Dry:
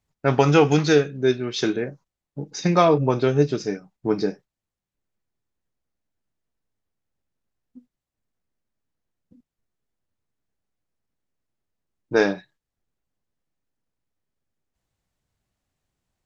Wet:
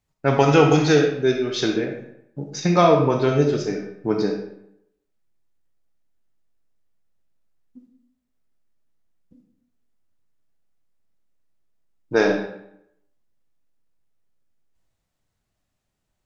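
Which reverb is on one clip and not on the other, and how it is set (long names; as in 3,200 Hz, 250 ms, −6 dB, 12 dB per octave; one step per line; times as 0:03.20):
comb and all-pass reverb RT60 0.76 s, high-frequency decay 0.75×, pre-delay 0 ms, DRR 3 dB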